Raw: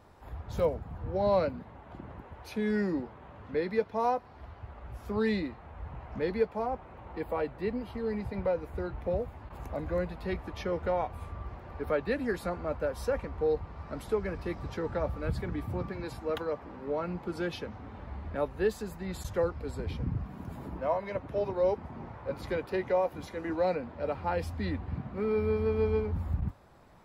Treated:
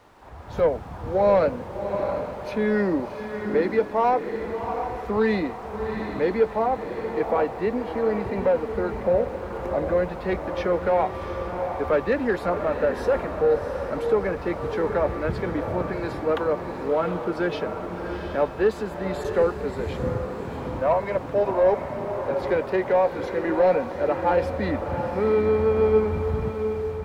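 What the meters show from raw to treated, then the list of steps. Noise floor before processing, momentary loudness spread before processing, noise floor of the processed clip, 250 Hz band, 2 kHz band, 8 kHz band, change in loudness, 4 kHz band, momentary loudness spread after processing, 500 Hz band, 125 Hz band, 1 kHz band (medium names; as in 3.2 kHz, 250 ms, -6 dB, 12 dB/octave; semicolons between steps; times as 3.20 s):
-50 dBFS, 14 LU, -35 dBFS, +7.0 dB, +9.0 dB, no reading, +8.5 dB, +5.0 dB, 8 LU, +9.5 dB, +4.0 dB, +10.0 dB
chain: added noise pink -58 dBFS; level rider gain up to 6.5 dB; overdrive pedal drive 14 dB, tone 1 kHz, clips at -9.5 dBFS; on a send: echo that smears into a reverb 712 ms, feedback 42%, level -7 dB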